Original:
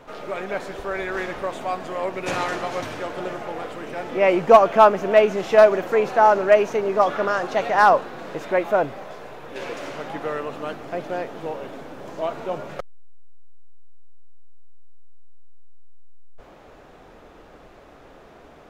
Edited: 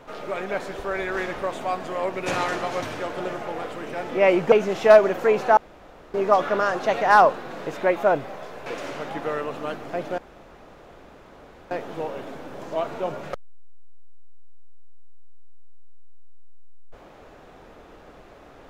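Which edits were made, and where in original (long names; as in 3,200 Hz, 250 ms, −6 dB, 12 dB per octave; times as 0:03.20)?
0:04.52–0:05.20: remove
0:06.25–0:06.82: fill with room tone
0:09.34–0:09.65: remove
0:11.17: splice in room tone 1.53 s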